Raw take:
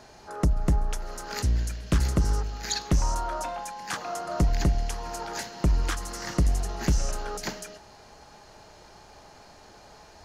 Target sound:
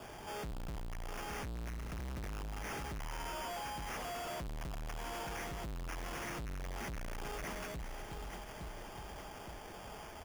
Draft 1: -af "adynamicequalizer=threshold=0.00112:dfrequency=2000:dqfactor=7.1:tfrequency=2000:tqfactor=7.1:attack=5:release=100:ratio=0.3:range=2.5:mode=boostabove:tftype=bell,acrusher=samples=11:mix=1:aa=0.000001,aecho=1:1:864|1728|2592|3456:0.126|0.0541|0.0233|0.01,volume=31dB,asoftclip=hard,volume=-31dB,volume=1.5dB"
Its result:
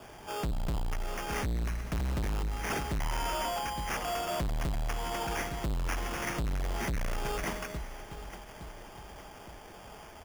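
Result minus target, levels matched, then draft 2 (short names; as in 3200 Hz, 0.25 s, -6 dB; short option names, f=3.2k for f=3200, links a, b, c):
overloaded stage: distortion -4 dB
-af "adynamicequalizer=threshold=0.00112:dfrequency=2000:dqfactor=7.1:tfrequency=2000:tqfactor=7.1:attack=5:release=100:ratio=0.3:range=2.5:mode=boostabove:tftype=bell,acrusher=samples=11:mix=1:aa=0.000001,aecho=1:1:864|1728|2592|3456:0.126|0.0541|0.0233|0.01,volume=42dB,asoftclip=hard,volume=-42dB,volume=1.5dB"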